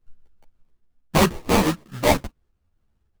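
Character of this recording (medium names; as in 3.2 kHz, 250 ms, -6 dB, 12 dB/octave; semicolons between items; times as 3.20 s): a buzz of ramps at a fixed pitch in blocks of 16 samples; phasing stages 6, 1.8 Hz, lowest notch 400–1800 Hz; aliases and images of a low sample rate 1.5 kHz, jitter 20%; a shimmering, thickened sound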